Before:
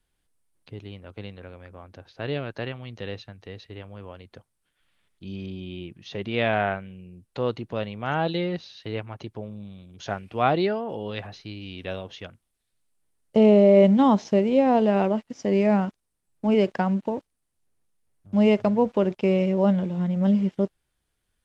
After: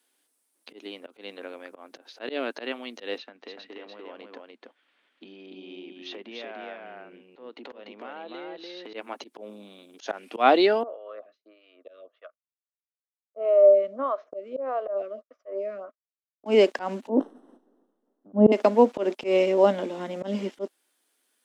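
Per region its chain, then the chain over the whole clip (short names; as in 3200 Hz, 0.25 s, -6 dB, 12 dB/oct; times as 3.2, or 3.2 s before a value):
3.18–8.94 LPF 3000 Hz + compressor 8:1, threshold -40 dBFS + echo 0.293 s -3 dB
10.83–16.46 expander -37 dBFS + double band-pass 860 Hz, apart 0.95 oct + photocell phaser 1.6 Hz
17.09–18.52 running mean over 19 samples + tilt -4.5 dB/oct + sustainer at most 22 dB/s
whole clip: elliptic high-pass 250 Hz, stop band 50 dB; high shelf 4500 Hz +7.5 dB; auto swell 0.126 s; gain +5 dB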